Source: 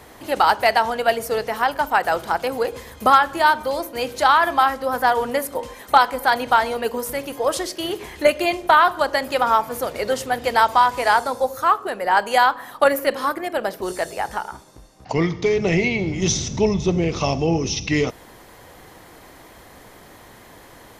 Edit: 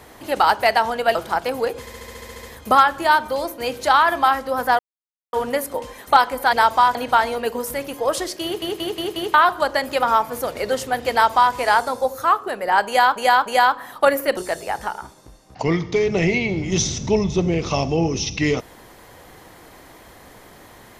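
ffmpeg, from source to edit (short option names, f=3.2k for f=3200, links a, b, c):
-filter_complex "[0:a]asplit=22[a][b][c][d][e][f][g][h][i][j][k][l][m][n][o][p][q][r][s][t][u][v];[a]atrim=end=1.152[w];[b]atrim=start=2.128:end=2.852[x];[c]atrim=start=2.778:end=2.852[y];[d]atrim=start=2.778:end=2.852[z];[e]atrim=start=2.778:end=2.852[aa];[f]atrim=start=2.778:end=2.852[ab];[g]atrim=start=2.778:end=2.852[ac];[h]atrim=start=2.778:end=2.852[ad];[i]atrim=start=2.778:end=2.852[ae];[j]atrim=start=2.778:end=2.852[af];[k]atrim=start=2.778:end=5.14,asetpts=PTS-STARTPTS,afade=t=out:st=2.358:d=0.004:c=hsin,apad=pad_dur=0.54[ag];[l]atrim=start=5.14:end=6.342,asetpts=PTS-STARTPTS,afade=t=in:d=0.004:c=hsin[ah];[m]atrim=start=10.508:end=10.932[ai];[n]atrim=start=6.338:end=8.012[aj];[o]atrim=start=7.828:end=8.012[ak];[p]atrim=start=7.828:end=8.012[al];[q]atrim=start=7.828:end=8.012[am];[r]atrim=start=7.828:end=8.012[an];[s]atrim=start=8.728:end=12.552[ao];[t]atrim=start=12.248:end=12.552[ap];[u]atrim=start=12.248:end=13.162[aq];[v]atrim=start=13.868[ar];[w][x]acrossfade=d=0.004:c1=hsin:c2=hsin[as];[as][y]acrossfade=d=0.004:c1=hsin:c2=hsin[at];[at][z]acrossfade=d=0.004:c1=hsin:c2=hsin[au];[au][aa]acrossfade=d=0.004:c1=hsin:c2=hsin[av];[av][ab]acrossfade=d=0.004:c1=hsin:c2=hsin[aw];[aw][ac]acrossfade=d=0.004:c1=hsin:c2=hsin[ax];[ax][ad]acrossfade=d=0.004:c1=hsin:c2=hsin[ay];[ay][ae]acrossfade=d=0.004:c1=hsin:c2=hsin[az];[az][af]acrossfade=d=0.004:c1=hsin:c2=hsin[ba];[ag][ah]concat=n=2:v=0:a=1[bb];[ba][bb]acrossfade=d=0.004:c1=hsin:c2=hsin[bc];[bc][ai]acrossfade=d=0.004:c1=hsin:c2=hsin[bd];[bd][aj]acrossfade=d=0.004:c1=hsin:c2=hsin[be];[be][ak]acrossfade=d=0.004:c1=hsin:c2=hsin[bf];[bf][al]acrossfade=d=0.004:c1=hsin:c2=hsin[bg];[bg][am]acrossfade=d=0.004:c1=hsin:c2=hsin[bh];[bh][an]acrossfade=d=0.004:c1=hsin:c2=hsin[bi];[bi][ao]acrossfade=d=0.004:c1=hsin:c2=hsin[bj];[bj][ap]acrossfade=d=0.004:c1=hsin:c2=hsin[bk];[bk][aq]acrossfade=d=0.004:c1=hsin:c2=hsin[bl];[bl][ar]acrossfade=d=0.004:c1=hsin:c2=hsin"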